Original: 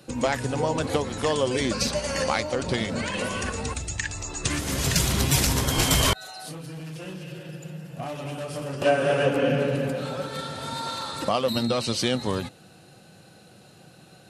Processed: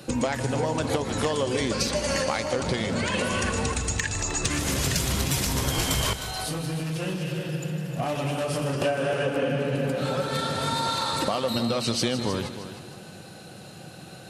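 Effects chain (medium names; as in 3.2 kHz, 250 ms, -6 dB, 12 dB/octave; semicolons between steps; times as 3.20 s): compression 6:1, threshold -30 dBFS, peak gain reduction 13.5 dB; saturation -15.5 dBFS, distortion -34 dB; multi-head delay 155 ms, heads first and second, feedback 41%, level -13.5 dB; trim +7 dB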